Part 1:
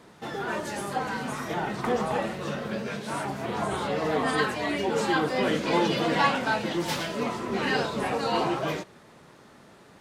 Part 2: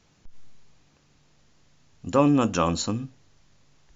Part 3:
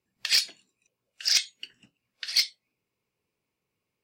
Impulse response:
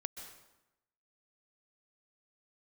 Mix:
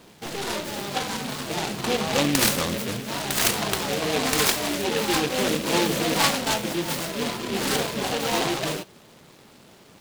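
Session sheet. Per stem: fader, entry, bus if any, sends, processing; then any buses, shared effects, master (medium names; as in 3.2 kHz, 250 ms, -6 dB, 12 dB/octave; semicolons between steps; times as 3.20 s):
+1.5 dB, 0.00 s, no send, none
-5.0 dB, 0.00 s, no send, none
-6.0 dB, 2.10 s, no send, high-order bell 1.8 kHz +14 dB; level flattener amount 50%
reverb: none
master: delay time shaken by noise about 2.6 kHz, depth 0.15 ms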